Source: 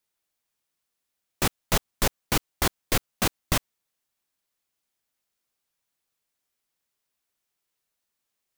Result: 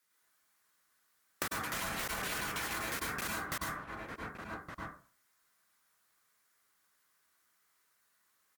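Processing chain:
high-pass filter 140 Hz 6 dB per octave
flat-topped bell 1,500 Hz +8.5 dB 1.1 octaves
0:01.45–0:03.55: delay with pitch and tempo change per echo 92 ms, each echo +4 semitones, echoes 3
slap from a distant wall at 200 metres, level −21 dB
convolution reverb RT60 0.45 s, pre-delay 92 ms, DRR −4.5 dB
brickwall limiter −14.5 dBFS, peak gain reduction 12 dB
downward compressor 12 to 1, threshold −35 dBFS, peak gain reduction 15 dB
high-shelf EQ 4,300 Hz +4 dB
MP3 80 kbit/s 48,000 Hz

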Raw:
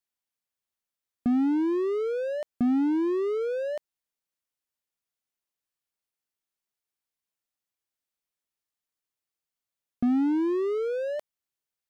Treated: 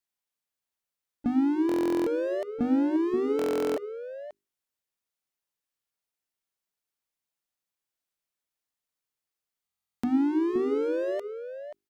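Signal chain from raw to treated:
pitch-shifted copies added +3 semitones −14 dB
mains-hum notches 50/100/150/200/250/300/350/400 Hz
slap from a distant wall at 91 metres, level −9 dB
buffer that repeats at 0:01.67/0:03.37/0:09.64, samples 1,024, times 16

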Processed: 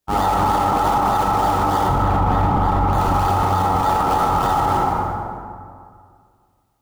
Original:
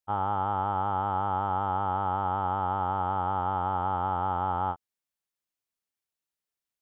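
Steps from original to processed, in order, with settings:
sub-octave generator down 2 octaves, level −5 dB
low-shelf EQ 140 Hz −6.5 dB
in parallel at −7 dB: sample-and-hold swept by an LFO 31×, swing 100% 3.3 Hz
0:01.88–0:02.93: on the sum: bass and treble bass +9 dB, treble −12 dB
on a send: feedback echo with a low-pass in the loop 149 ms, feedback 66%, low-pass 940 Hz, level −11.5 dB
on the sum: dense smooth reverb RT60 2.1 s, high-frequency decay 0.55×, DRR −6 dB
boost into a limiter +16.5 dB
level −8.5 dB

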